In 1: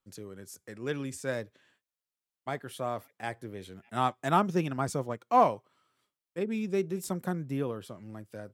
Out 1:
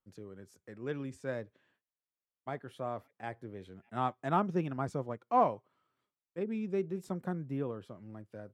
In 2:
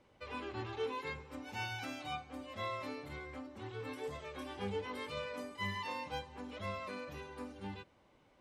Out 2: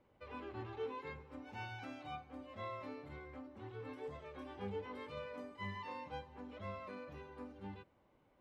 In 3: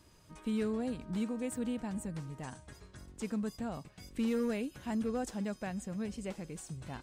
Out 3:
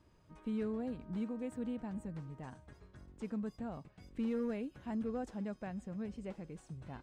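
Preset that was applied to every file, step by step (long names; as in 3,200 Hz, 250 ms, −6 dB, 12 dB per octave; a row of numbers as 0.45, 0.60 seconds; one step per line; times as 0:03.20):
low-pass filter 1,600 Hz 6 dB per octave
level −3.5 dB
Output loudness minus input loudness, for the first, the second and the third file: −4.5, −5.0, −4.0 LU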